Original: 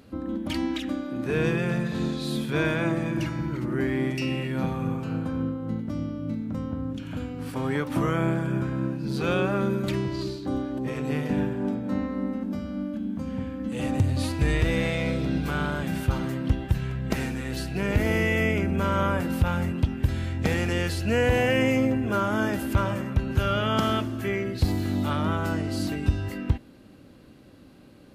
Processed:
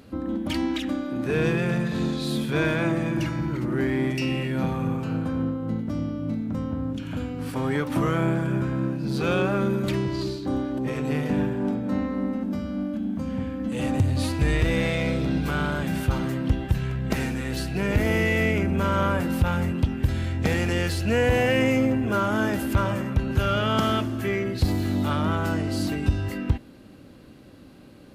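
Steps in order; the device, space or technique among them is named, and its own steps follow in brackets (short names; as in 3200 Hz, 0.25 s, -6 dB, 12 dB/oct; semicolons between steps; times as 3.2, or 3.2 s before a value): parallel distortion (in parallel at -8 dB: hard clip -28.5 dBFS, distortion -6 dB)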